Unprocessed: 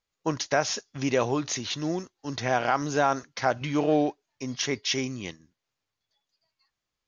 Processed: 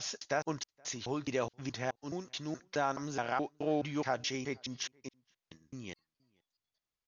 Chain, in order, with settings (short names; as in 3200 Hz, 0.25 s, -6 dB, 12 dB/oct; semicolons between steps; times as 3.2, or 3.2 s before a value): slices in reverse order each 0.212 s, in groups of 4; outdoor echo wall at 81 m, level -30 dB; gain -9 dB